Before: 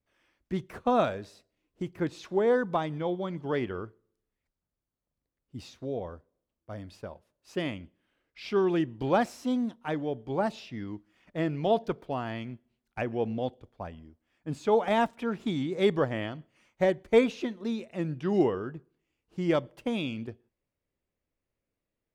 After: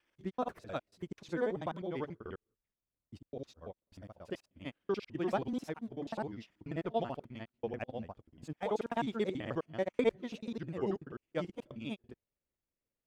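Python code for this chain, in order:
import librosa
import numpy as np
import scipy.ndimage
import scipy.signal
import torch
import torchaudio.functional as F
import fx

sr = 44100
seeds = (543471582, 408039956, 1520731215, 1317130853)

y = fx.block_reorder(x, sr, ms=83.0, group=4)
y = fx.stretch_grains(y, sr, factor=0.59, grain_ms=90.0)
y = y * 10.0 ** (-6.5 / 20.0)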